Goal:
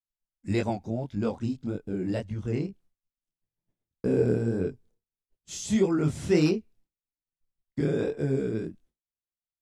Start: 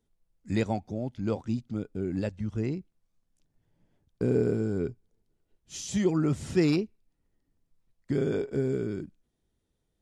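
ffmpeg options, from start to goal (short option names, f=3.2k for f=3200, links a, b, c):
-af "asetrate=45938,aresample=44100,flanger=delay=20:depth=7.6:speed=1.7,agate=range=-33dB:threshold=-57dB:ratio=3:detection=peak,volume=4.5dB"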